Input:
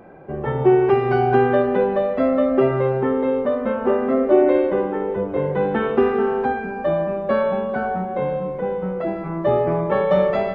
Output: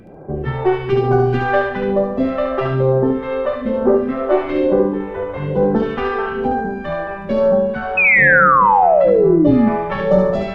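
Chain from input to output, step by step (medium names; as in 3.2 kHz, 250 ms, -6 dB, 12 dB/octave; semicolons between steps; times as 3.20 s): tracing distortion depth 0.043 ms; bass shelf 160 Hz +4 dB; reverse; upward compressor, threshold -35 dBFS; reverse; phase shifter stages 2, 1.1 Hz, lowest notch 180–2900 Hz; painted sound fall, 7.97–9.69 s, 210–2600 Hz -17 dBFS; on a send: thinning echo 72 ms, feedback 39%, high-pass 420 Hz, level -3 dB; on the sum: trim +4 dB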